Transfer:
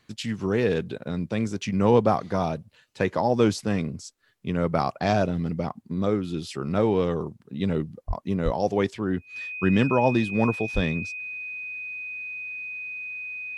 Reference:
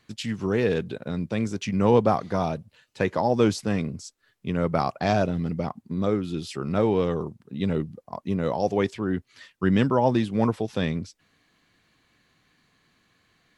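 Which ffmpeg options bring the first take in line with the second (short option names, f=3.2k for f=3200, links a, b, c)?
-filter_complex "[0:a]bandreject=f=2.5k:w=30,asplit=3[a][b][c];[a]afade=t=out:st=8.07:d=0.02[d];[b]highpass=f=140:w=0.5412,highpass=f=140:w=1.3066,afade=t=in:st=8.07:d=0.02,afade=t=out:st=8.19:d=0.02[e];[c]afade=t=in:st=8.19:d=0.02[f];[d][e][f]amix=inputs=3:normalize=0,asplit=3[g][h][i];[g]afade=t=out:st=8.44:d=0.02[j];[h]highpass=f=140:w=0.5412,highpass=f=140:w=1.3066,afade=t=in:st=8.44:d=0.02,afade=t=out:st=8.56:d=0.02[k];[i]afade=t=in:st=8.56:d=0.02[l];[j][k][l]amix=inputs=3:normalize=0,asplit=3[m][n][o];[m]afade=t=out:st=10.74:d=0.02[p];[n]highpass=f=140:w=0.5412,highpass=f=140:w=1.3066,afade=t=in:st=10.74:d=0.02,afade=t=out:st=10.86:d=0.02[q];[o]afade=t=in:st=10.86:d=0.02[r];[p][q][r]amix=inputs=3:normalize=0"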